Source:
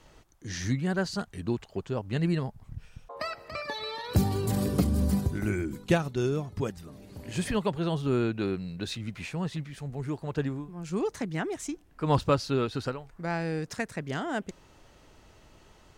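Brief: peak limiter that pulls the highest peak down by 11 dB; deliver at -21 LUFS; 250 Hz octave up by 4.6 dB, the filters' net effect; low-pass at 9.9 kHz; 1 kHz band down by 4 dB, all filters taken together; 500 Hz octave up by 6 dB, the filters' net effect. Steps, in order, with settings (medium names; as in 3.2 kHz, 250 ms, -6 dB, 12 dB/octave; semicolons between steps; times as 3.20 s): low-pass 9.9 kHz; peaking EQ 250 Hz +4.5 dB; peaking EQ 500 Hz +8 dB; peaking EQ 1 kHz -9 dB; trim +8.5 dB; peak limiter -9.5 dBFS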